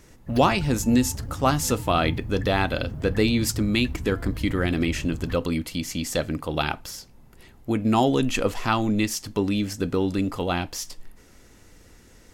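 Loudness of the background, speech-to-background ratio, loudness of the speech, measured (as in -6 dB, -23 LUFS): -35.0 LUFS, 10.5 dB, -24.5 LUFS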